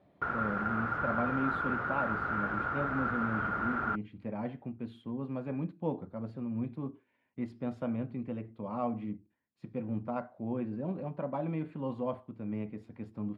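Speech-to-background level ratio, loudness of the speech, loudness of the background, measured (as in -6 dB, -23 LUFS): -4.0 dB, -37.5 LUFS, -33.5 LUFS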